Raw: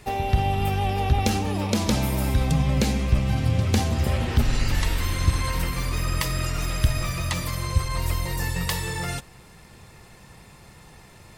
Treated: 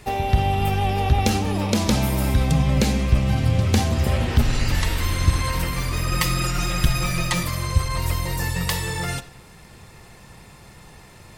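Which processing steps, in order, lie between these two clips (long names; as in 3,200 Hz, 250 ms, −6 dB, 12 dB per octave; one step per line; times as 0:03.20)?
0:06.11–0:07.43: comb filter 5.6 ms, depth 84%
convolution reverb RT60 0.55 s, pre-delay 10 ms, DRR 13.5 dB
level +2.5 dB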